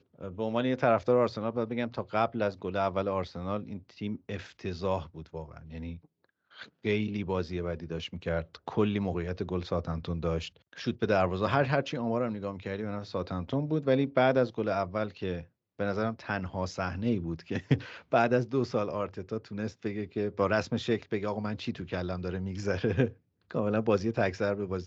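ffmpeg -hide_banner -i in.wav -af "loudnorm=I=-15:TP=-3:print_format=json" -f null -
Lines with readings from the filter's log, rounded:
"input_i" : "-31.1",
"input_tp" : "-10.7",
"input_lra" : "6.1",
"input_thresh" : "-41.4",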